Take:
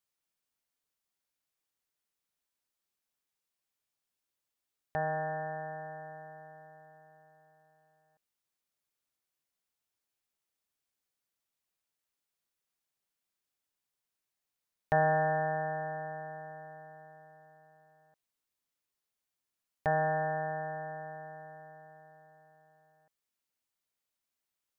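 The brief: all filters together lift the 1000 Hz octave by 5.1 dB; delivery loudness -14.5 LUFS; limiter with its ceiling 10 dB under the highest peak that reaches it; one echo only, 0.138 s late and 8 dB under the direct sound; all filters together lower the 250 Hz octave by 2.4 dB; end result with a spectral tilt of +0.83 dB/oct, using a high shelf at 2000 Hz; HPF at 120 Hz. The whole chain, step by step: HPF 120 Hz; bell 250 Hz -3.5 dB; bell 1000 Hz +8.5 dB; high shelf 2000 Hz -3.5 dB; limiter -22.5 dBFS; echo 0.138 s -8 dB; gain +18 dB

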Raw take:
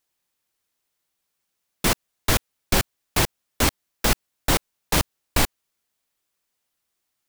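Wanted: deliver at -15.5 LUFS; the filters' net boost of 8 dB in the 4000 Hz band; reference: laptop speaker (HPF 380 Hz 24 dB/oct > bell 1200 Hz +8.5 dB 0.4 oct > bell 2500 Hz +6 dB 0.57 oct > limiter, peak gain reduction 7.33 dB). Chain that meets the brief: HPF 380 Hz 24 dB/oct; bell 1200 Hz +8.5 dB 0.4 oct; bell 2500 Hz +6 dB 0.57 oct; bell 4000 Hz +8 dB; gain +9.5 dB; limiter -1.5 dBFS

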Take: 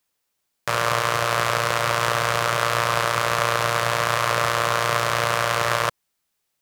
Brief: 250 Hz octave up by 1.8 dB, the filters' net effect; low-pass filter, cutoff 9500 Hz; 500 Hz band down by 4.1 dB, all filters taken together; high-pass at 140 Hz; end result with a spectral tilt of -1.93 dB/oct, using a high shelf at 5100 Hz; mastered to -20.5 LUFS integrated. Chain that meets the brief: HPF 140 Hz; LPF 9500 Hz; bell 250 Hz +7 dB; bell 500 Hz -6.5 dB; high shelf 5100 Hz +4.5 dB; gain +1 dB

